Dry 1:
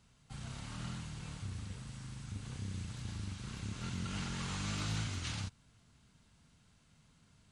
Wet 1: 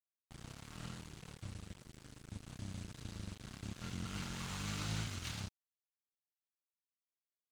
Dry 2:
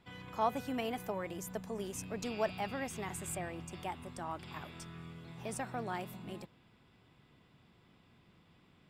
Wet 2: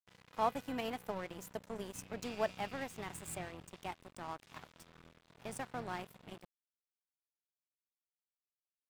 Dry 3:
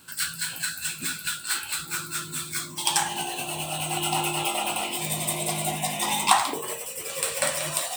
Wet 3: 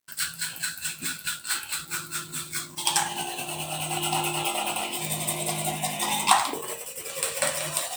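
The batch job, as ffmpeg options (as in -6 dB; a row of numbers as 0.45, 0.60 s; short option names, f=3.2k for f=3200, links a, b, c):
-af "aeval=exprs='sgn(val(0))*max(abs(val(0))-0.00531,0)':c=same"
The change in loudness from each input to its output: -3.5, -2.0, -1.0 LU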